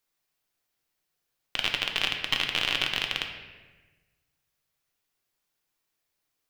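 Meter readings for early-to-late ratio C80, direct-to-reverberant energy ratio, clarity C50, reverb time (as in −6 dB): 7.5 dB, 2.5 dB, 6.0 dB, 1.3 s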